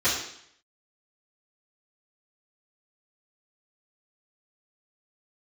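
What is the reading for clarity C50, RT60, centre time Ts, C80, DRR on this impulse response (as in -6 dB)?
3.5 dB, 0.70 s, 44 ms, 6.5 dB, -15.5 dB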